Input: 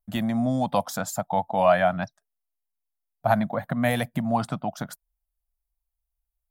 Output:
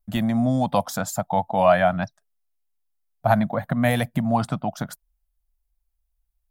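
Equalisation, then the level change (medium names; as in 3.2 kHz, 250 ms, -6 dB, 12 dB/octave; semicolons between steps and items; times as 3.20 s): bass shelf 94 Hz +8 dB; +2.0 dB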